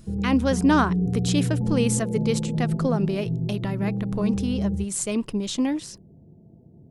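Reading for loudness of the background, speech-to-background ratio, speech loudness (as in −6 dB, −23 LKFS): −26.5 LKFS, 0.5 dB, −26.0 LKFS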